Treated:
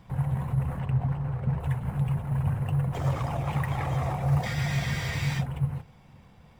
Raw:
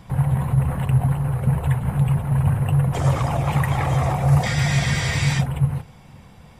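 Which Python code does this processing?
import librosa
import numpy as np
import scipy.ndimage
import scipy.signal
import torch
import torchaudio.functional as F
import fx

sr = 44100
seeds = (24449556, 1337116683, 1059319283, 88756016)

y = scipy.ndimage.median_filter(x, 5, mode='constant')
y = fx.resample_linear(y, sr, factor=4, at=(0.79, 1.6))
y = y * librosa.db_to_amplitude(-8.0)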